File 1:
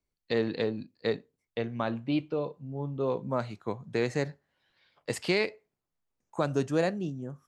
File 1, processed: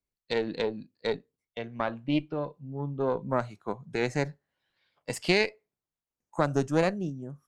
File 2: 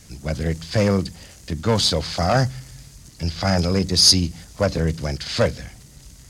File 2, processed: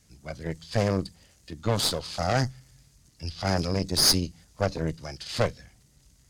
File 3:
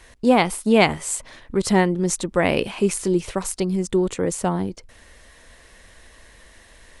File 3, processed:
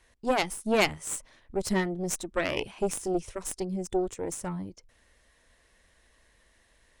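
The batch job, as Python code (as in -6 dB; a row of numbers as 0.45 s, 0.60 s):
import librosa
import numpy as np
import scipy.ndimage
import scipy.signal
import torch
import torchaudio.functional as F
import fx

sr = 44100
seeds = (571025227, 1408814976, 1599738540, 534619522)

y = fx.noise_reduce_blind(x, sr, reduce_db=7)
y = fx.cheby_harmonics(y, sr, harmonics=(6,), levels_db=(-14,), full_scale_db=-1.0)
y = y * 10.0 ** (-9 / 20.0) / np.max(np.abs(y))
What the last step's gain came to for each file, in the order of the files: +1.0 dB, -8.0 dB, -8.0 dB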